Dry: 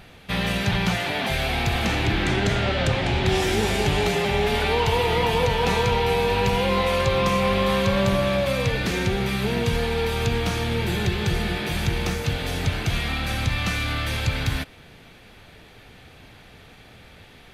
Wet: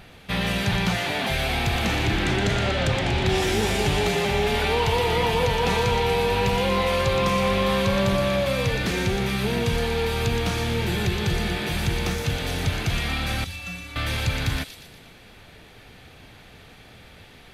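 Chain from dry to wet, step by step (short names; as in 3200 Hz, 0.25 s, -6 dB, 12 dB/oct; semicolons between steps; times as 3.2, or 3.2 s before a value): soft clip -11 dBFS, distortion -25 dB; 13.44–13.96 metallic resonator 83 Hz, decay 0.47 s, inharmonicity 0.03; on a send: thin delay 0.119 s, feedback 53%, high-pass 4000 Hz, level -5 dB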